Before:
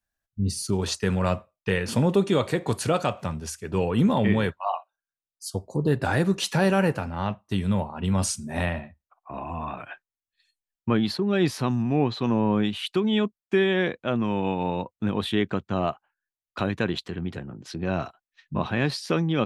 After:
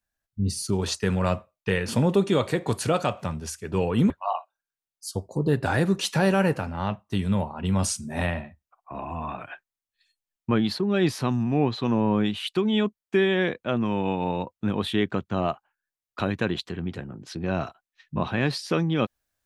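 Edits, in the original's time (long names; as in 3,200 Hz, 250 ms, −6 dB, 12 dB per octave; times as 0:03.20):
0:04.10–0:04.49: remove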